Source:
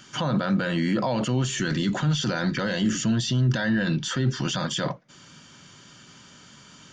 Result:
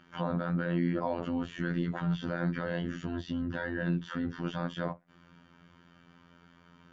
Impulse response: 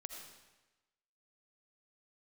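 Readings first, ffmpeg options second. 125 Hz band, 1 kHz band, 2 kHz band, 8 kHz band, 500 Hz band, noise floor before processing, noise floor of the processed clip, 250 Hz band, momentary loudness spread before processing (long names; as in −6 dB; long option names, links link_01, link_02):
−9.5 dB, −7.0 dB, −8.5 dB, below −25 dB, −6.0 dB, −50 dBFS, −61 dBFS, −7.5 dB, 4 LU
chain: -af "afftfilt=real='hypot(re,im)*cos(PI*b)':imag='0':win_size=2048:overlap=0.75,lowpass=1800,volume=-3dB"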